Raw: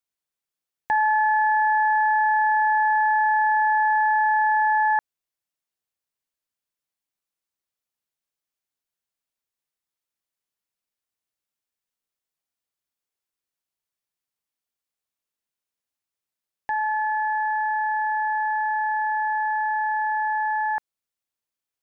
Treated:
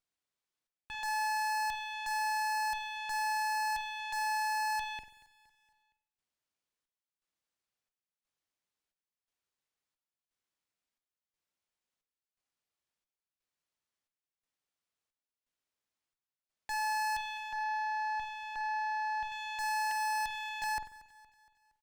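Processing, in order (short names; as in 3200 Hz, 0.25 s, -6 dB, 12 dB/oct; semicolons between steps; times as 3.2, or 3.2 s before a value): 19.91–20.64 steep high-pass 510 Hz 96 dB/oct; limiter -25.5 dBFS, peak gain reduction 10 dB; chopper 0.97 Hz, depth 65%, duty 65%; added harmonics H 3 -17 dB, 4 -9 dB, 7 -16 dB, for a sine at -25 dBFS; hard clip -37 dBFS, distortion -5 dB; 17.37–19.32 air absorption 280 m; feedback echo 0.233 s, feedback 51%, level -19.5 dB; reverb, pre-delay 45 ms, DRR 9.5 dB; running maximum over 3 samples; gain +3.5 dB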